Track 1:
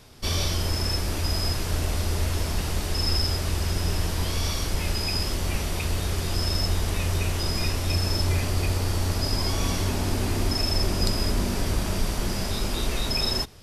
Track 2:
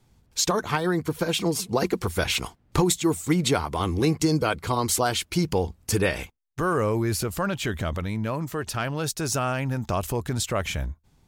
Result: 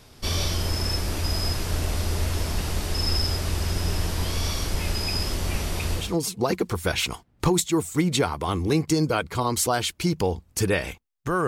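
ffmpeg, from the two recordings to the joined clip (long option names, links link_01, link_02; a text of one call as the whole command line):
ffmpeg -i cue0.wav -i cue1.wav -filter_complex "[0:a]apad=whole_dur=11.47,atrim=end=11.47,atrim=end=6.17,asetpts=PTS-STARTPTS[link_01];[1:a]atrim=start=1.25:end=6.79,asetpts=PTS-STARTPTS[link_02];[link_01][link_02]acrossfade=duration=0.24:curve1=tri:curve2=tri" out.wav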